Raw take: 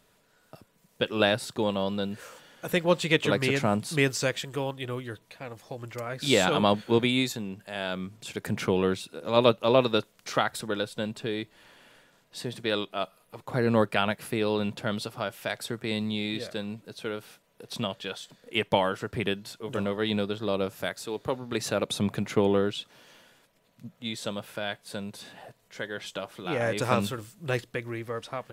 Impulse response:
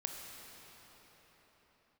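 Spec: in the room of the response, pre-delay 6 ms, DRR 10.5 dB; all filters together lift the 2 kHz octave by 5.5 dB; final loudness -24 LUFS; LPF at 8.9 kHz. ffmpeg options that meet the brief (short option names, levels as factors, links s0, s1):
-filter_complex "[0:a]lowpass=8900,equalizer=f=2000:t=o:g=7,asplit=2[s0][s1];[1:a]atrim=start_sample=2205,adelay=6[s2];[s1][s2]afir=irnorm=-1:irlink=0,volume=0.299[s3];[s0][s3]amix=inputs=2:normalize=0,volume=1.41"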